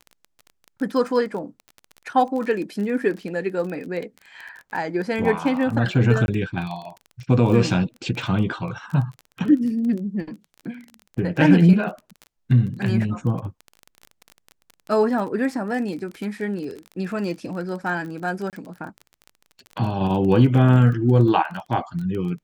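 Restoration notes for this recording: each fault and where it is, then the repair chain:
surface crackle 24 per second −29 dBFS
0:06.26–0:06.28: drop-out 21 ms
0:18.50–0:18.53: drop-out 28 ms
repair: click removal
repair the gap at 0:06.26, 21 ms
repair the gap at 0:18.50, 28 ms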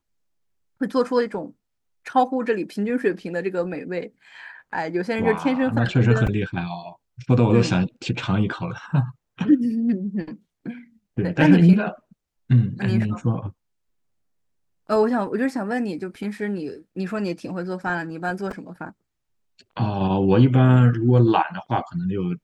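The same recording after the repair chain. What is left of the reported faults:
none of them is left

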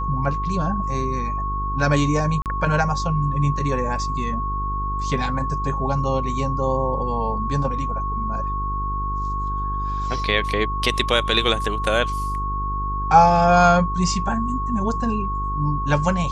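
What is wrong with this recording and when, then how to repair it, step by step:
mains buzz 50 Hz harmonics 9 −27 dBFS
whistle 1,100 Hz −25 dBFS
0:02.42–0:02.46: drop-out 38 ms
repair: hum removal 50 Hz, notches 9
notch filter 1,100 Hz, Q 30
repair the gap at 0:02.42, 38 ms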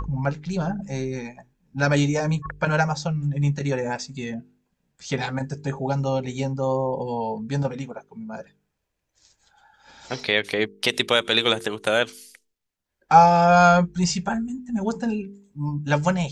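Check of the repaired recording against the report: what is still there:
none of them is left

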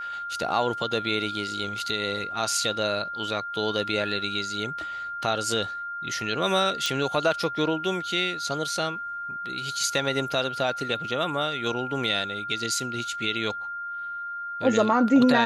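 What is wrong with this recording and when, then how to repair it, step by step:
whistle 1,400 Hz −31 dBFS
0:06.86: click −12 dBFS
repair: click removal
notch filter 1,400 Hz, Q 30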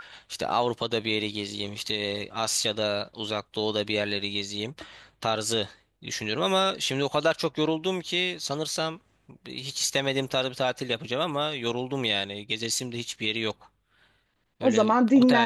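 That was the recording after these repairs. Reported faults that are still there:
none of them is left

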